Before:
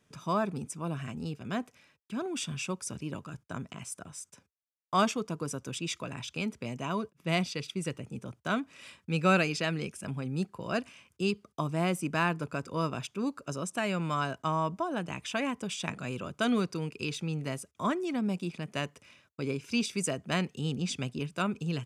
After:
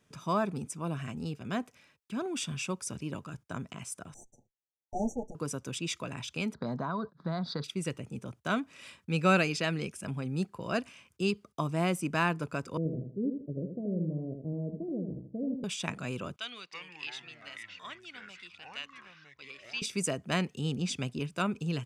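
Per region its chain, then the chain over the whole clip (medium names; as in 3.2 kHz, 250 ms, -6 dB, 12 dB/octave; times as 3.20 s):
4.14–5.35 s: comb filter that takes the minimum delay 8.4 ms + brick-wall FIR band-stop 890–5700 Hz + distance through air 90 m
6.54–7.64 s: FFT filter 110 Hz 0 dB, 160 Hz +9 dB, 360 Hz +3 dB, 800 Hz +9 dB, 1.6 kHz +10 dB, 2.7 kHz -26 dB, 4 kHz +11 dB, 5.9 kHz -15 dB, 12 kHz -28 dB + compression, threshold -29 dBFS
12.77–15.64 s: steep low-pass 520 Hz 48 dB/octave + feedback delay 80 ms, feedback 30%, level -6 dB
16.36–19.82 s: band-pass filter 3.2 kHz, Q 1.8 + ever faster or slower copies 313 ms, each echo -5 st, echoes 3, each echo -6 dB
whole clip: none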